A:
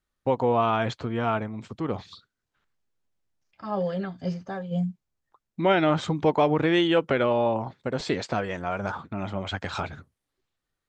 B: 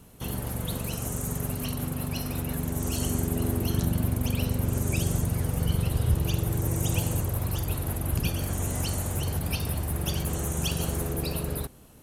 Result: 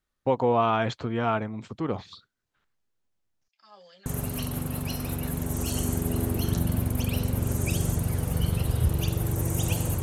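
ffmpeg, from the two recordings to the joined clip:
-filter_complex "[0:a]asettb=1/sr,asplit=3[a][b][c];[a]atrim=end=3.484[d];[b]atrim=start=3.48:end=4.06,asetpts=PTS-STARTPTS,afade=t=in:d=0.004:c=qsin,afade=t=out:st=0.576:d=0.004:c=qsin,bandpass=f=5.7k:t=q:w=1.7:csg=0[e];[c]atrim=start=4.056[f];[d][e]acrossfade=d=0.004:c1=hsin:c2=qsin[g];[g][f]acrossfade=d=0.004:c1=qsin:c2=hsin,apad=whole_dur=10.02,atrim=end=10.02,atrim=end=4.062[h];[1:a]atrim=start=1.318:end=7.28[i];[h][i]acrossfade=d=0.004:c1=hsin:c2=hsin"

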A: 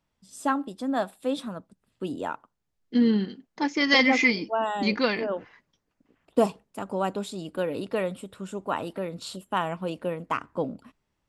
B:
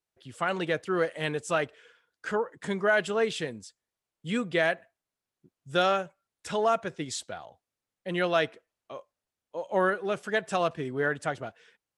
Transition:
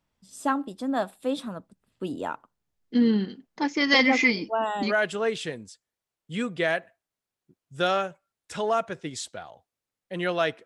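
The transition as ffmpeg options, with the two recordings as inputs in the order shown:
-filter_complex "[0:a]apad=whole_dur=10.65,atrim=end=10.65,atrim=end=4.95,asetpts=PTS-STARTPTS[a];[1:a]atrim=start=2.78:end=8.6,asetpts=PTS-STARTPTS[b];[a][b]acrossfade=d=0.12:c1=tri:c2=tri"

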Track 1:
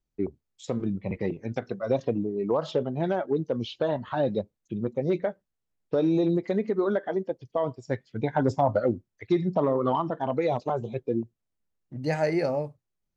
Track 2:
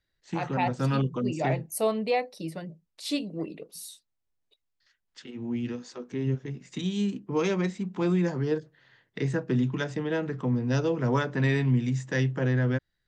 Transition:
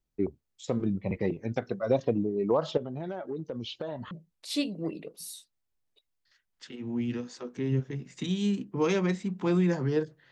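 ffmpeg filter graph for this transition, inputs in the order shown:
-filter_complex "[0:a]asettb=1/sr,asplit=3[a][b][c];[a]atrim=end=2.774[d];[b]atrim=start=2.77:end=4.11,asetpts=PTS-STARTPTS,afade=t=in:d=0.004:c=qsin,afade=t=out:st=1.336:d=0.004:c=qsin,acompressor=threshold=-32dB:ratio=5:attack=3.2:release=140:knee=1:detection=peak[e];[c]atrim=start=4.106[f];[d][e]acrossfade=d=0.004:c1=hsin:c2=qsin[g];[g][f]acrossfade=d=0.004:c1=qsin:c2=hsin,apad=whole_dur=10.31,atrim=end=10.31,atrim=end=4.112[h];[1:a]atrim=start=2.658:end=8.86[i];[h][i]acrossfade=d=0.004:c1=hsin:c2=hsin"

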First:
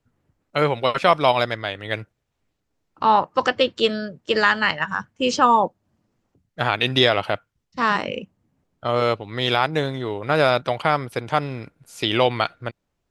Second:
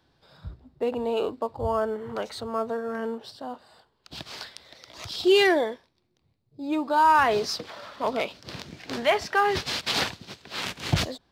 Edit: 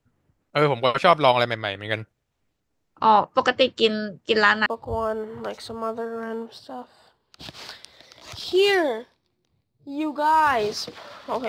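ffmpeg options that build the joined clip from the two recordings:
-filter_complex "[0:a]apad=whole_dur=11.48,atrim=end=11.48,atrim=end=4.662[a];[1:a]atrim=start=1.378:end=8.2[b];[a][b]acrossfade=d=0.004:c1=hsin:c2=hsin"

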